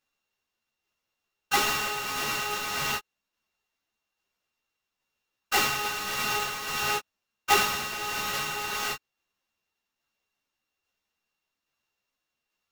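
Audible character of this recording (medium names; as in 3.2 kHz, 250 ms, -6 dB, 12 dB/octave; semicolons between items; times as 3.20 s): a buzz of ramps at a fixed pitch in blocks of 16 samples; tremolo saw down 1.2 Hz, depth 30%; aliases and images of a low sample rate 9.4 kHz, jitter 20%; a shimmering, thickened sound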